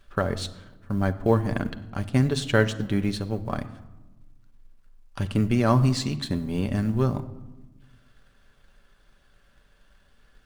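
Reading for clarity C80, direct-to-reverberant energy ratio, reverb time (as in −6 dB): 17.0 dB, 7.0 dB, 1.1 s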